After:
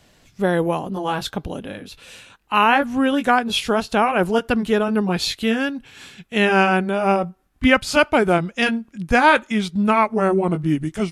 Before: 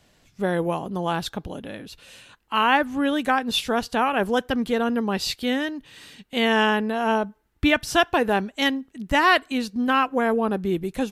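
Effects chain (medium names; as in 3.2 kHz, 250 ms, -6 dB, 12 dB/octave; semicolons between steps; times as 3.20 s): pitch bend over the whole clip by -3.5 st starting unshifted; trim +5 dB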